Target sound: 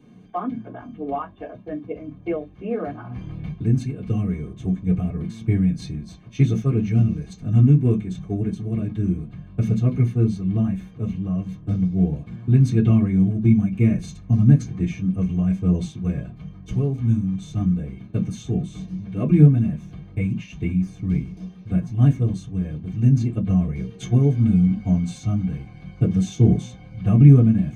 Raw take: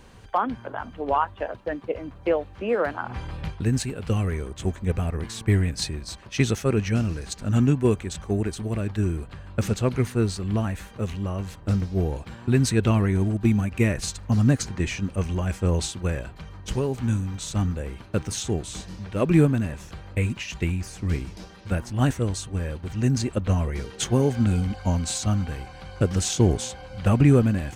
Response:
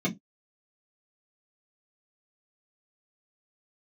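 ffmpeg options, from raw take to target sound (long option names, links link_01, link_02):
-filter_complex "[0:a]asubboost=boost=6.5:cutoff=88[link_01];[1:a]atrim=start_sample=2205[link_02];[link_01][link_02]afir=irnorm=-1:irlink=0,volume=-15dB"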